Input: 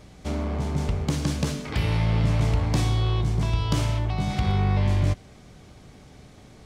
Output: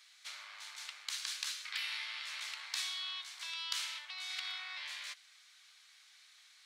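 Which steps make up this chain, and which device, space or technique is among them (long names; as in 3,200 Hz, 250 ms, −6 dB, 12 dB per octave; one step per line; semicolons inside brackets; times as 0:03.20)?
headphones lying on a table (high-pass filter 1,500 Hz 24 dB per octave; parametric band 4,000 Hz +6 dB 0.45 octaves)
level −4.5 dB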